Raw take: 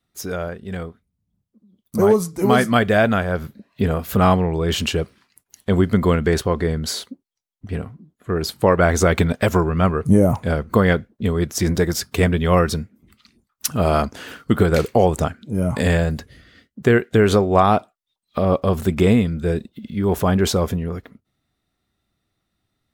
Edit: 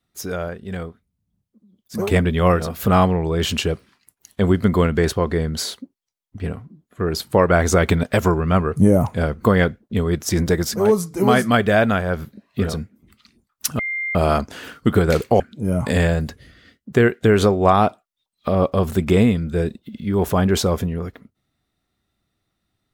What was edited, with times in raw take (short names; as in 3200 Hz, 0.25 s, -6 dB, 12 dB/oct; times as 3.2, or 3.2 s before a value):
2.01–3.92 swap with 12.08–12.7, crossfade 0.24 s
13.79 add tone 2100 Hz -22 dBFS 0.36 s
15.04–15.3 cut